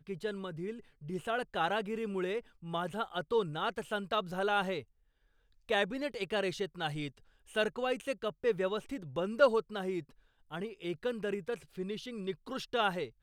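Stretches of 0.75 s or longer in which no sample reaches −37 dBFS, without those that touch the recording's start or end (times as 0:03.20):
0:04.79–0:05.69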